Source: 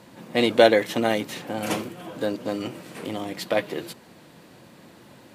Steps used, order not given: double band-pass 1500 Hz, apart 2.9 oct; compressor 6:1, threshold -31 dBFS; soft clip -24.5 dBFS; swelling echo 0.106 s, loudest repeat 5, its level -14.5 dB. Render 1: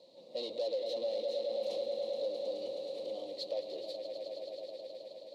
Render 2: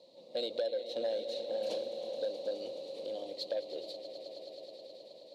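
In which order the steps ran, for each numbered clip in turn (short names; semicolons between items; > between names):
swelling echo > soft clip > double band-pass > compressor; double band-pass > compressor > swelling echo > soft clip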